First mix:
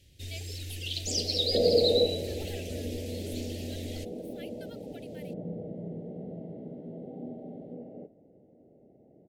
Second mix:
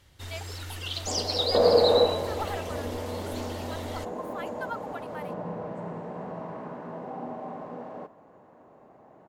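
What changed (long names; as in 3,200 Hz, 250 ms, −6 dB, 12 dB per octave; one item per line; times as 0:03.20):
first sound: add notch filter 2,500 Hz, Q 15
second sound: remove Savitzky-Golay smoothing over 65 samples
master: remove Butterworth band-reject 1,100 Hz, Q 0.53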